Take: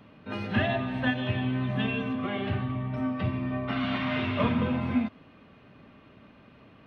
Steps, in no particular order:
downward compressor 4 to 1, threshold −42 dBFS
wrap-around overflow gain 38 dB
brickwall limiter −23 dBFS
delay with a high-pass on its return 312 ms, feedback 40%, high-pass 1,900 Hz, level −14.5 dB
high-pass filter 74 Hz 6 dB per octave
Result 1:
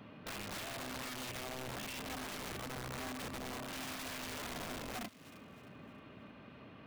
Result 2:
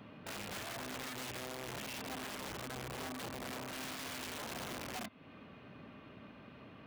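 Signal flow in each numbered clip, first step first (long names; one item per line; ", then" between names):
high-pass filter, then brickwall limiter, then downward compressor, then wrap-around overflow, then delay with a high-pass on its return
brickwall limiter, then downward compressor, then delay with a high-pass on its return, then wrap-around overflow, then high-pass filter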